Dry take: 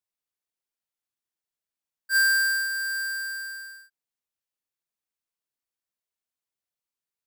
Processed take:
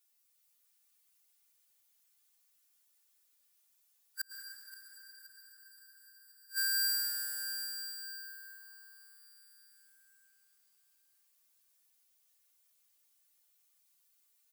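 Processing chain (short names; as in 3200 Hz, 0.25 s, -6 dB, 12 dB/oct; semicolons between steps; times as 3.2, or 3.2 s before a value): steep high-pass 250 Hz 72 dB/oct; high shelf 6900 Hz +10 dB; comb 3.4 ms, depth 80%; time stretch by phase-locked vocoder 2×; flipped gate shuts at -21 dBFS, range -42 dB; feedback echo 0.525 s, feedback 40%, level -15 dB; plate-style reverb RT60 4.4 s, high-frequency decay 0.9×, pre-delay 95 ms, DRR 2 dB; mismatched tape noise reduction encoder only; gain -2 dB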